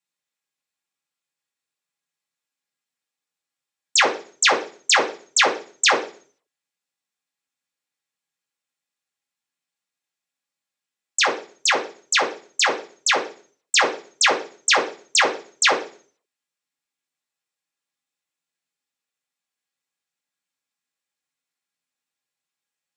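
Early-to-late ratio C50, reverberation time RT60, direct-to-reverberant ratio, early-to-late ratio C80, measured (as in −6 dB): 11.0 dB, 0.40 s, −2.5 dB, 16.0 dB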